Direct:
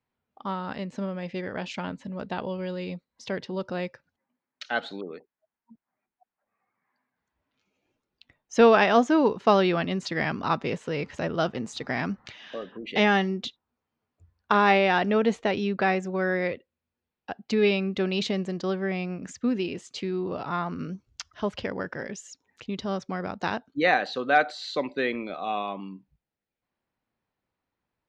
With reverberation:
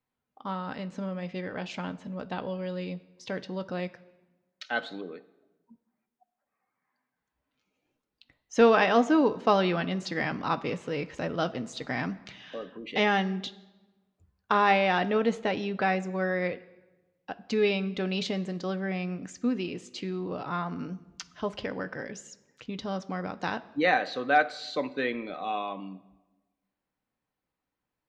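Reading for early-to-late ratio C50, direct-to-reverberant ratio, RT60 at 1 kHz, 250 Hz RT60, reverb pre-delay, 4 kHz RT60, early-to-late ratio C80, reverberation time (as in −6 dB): 18.0 dB, 9.5 dB, 1.1 s, 1.5 s, 4 ms, 0.85 s, 20.0 dB, 1.1 s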